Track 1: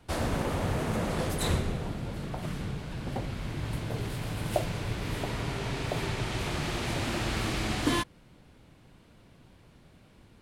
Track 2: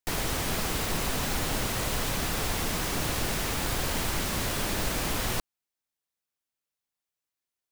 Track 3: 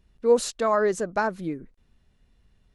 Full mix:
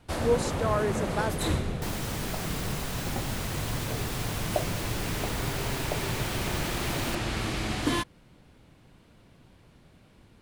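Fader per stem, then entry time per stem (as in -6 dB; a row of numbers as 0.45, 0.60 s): 0.0, -5.5, -6.0 dB; 0.00, 1.75, 0.00 s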